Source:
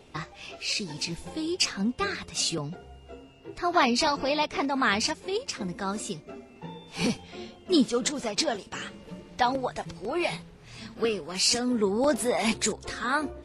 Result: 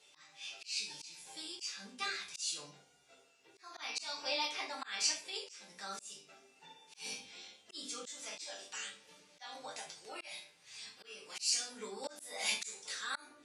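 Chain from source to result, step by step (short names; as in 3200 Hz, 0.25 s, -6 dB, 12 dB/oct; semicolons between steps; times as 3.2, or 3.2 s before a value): differentiator; resonator bank G2 sus4, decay 0.21 s; shoebox room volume 32 m³, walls mixed, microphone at 0.51 m; auto swell 0.3 s; LPF 8400 Hz 12 dB/oct; gain +12 dB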